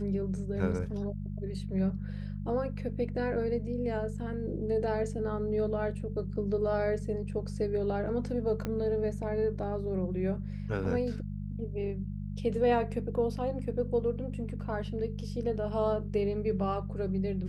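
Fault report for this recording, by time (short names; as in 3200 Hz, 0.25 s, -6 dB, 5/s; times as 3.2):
hum 50 Hz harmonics 4 -37 dBFS
8.65 pop -20 dBFS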